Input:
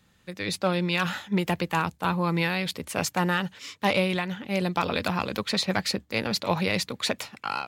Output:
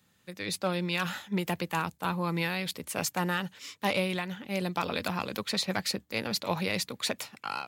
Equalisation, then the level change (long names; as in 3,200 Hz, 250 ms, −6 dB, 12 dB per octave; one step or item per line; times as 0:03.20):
high-pass filter 91 Hz
high-shelf EQ 8,400 Hz +9 dB
−5.0 dB